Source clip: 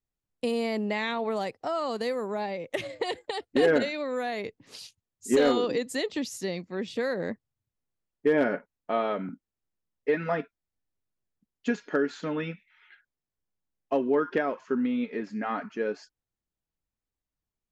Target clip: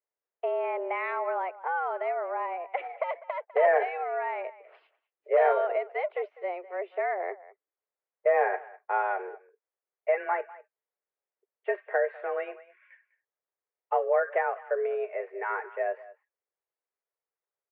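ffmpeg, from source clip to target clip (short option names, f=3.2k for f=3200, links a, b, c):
-filter_complex "[0:a]asplit=2[a][b];[b]adelay=200,highpass=300,lowpass=3.4k,asoftclip=type=hard:threshold=-24.5dB,volume=-17dB[c];[a][c]amix=inputs=2:normalize=0,highpass=f=240:t=q:w=0.5412,highpass=f=240:t=q:w=1.307,lowpass=f=2.1k:t=q:w=0.5176,lowpass=f=2.1k:t=q:w=0.7071,lowpass=f=2.1k:t=q:w=1.932,afreqshift=180"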